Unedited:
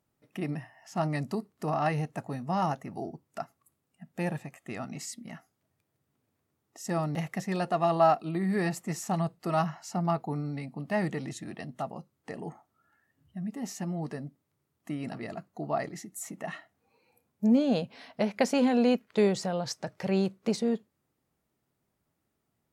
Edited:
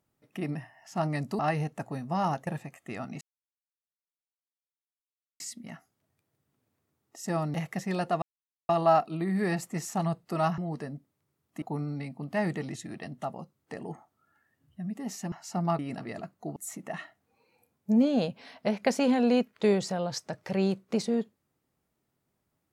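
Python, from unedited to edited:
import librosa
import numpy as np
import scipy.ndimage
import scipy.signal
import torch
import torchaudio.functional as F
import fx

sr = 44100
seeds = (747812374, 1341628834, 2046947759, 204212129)

y = fx.edit(x, sr, fx.cut(start_s=1.39, length_s=0.38),
    fx.cut(start_s=2.85, length_s=1.42),
    fx.insert_silence(at_s=5.01, length_s=2.19),
    fx.insert_silence(at_s=7.83, length_s=0.47),
    fx.swap(start_s=9.72, length_s=0.47, other_s=13.89, other_length_s=1.04),
    fx.cut(start_s=15.7, length_s=0.4), tone=tone)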